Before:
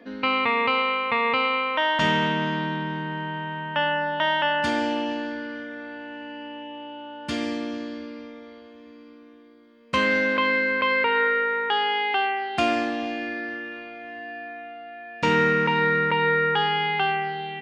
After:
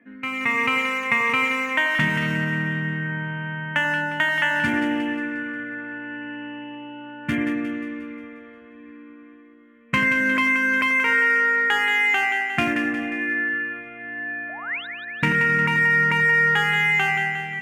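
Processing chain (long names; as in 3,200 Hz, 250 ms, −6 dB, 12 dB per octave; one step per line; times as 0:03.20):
adaptive Wiener filter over 9 samples
low-shelf EQ 220 Hz −6 dB
mains-hum notches 50/100 Hz
tuned comb filter 150 Hz, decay 1 s, harmonics odd, mix 60%
reverb reduction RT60 0.64 s
automatic gain control gain up to 13 dB
sound drawn into the spectrogram rise, 0:14.49–0:14.87, 600–4,000 Hz −33 dBFS
octave-band graphic EQ 125/250/500/1,000/2,000/4,000 Hz +10/+4/−9/−6/+11/−10 dB
downward compressor, threshold −17 dBFS, peak gain reduction 6 dB
echo with a time of its own for lows and highs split 1,200 Hz, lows 88 ms, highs 178 ms, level −7.5 dB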